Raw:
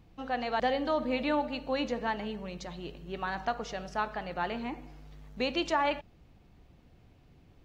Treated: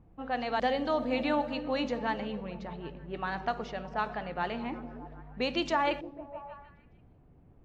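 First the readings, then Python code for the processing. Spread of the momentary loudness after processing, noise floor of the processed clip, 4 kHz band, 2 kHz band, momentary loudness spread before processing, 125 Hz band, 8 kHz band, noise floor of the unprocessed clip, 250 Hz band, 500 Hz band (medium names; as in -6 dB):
15 LU, -59 dBFS, -0.5 dB, 0.0 dB, 12 LU, +1.5 dB, no reading, -60 dBFS, +1.0 dB, +0.5 dB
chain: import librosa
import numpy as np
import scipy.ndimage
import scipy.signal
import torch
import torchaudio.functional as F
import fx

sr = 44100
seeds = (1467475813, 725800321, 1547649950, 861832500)

y = fx.echo_stepped(x, sr, ms=154, hz=180.0, octaves=0.7, feedback_pct=70, wet_db=-6.5)
y = fx.env_lowpass(y, sr, base_hz=1100.0, full_db=-25.0)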